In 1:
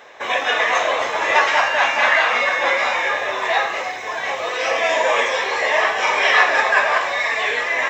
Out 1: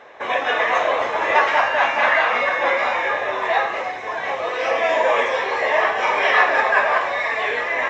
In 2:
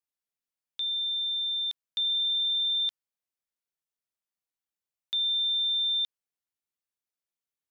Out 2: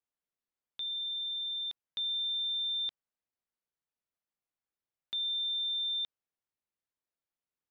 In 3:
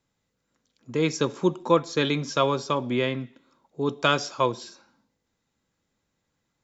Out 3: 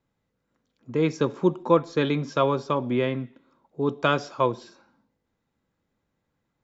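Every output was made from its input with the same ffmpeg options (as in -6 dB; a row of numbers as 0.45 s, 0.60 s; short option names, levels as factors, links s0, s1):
-af "lowpass=f=1600:p=1,volume=1.19"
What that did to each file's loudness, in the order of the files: -1.5 LU, -6.0 LU, +0.5 LU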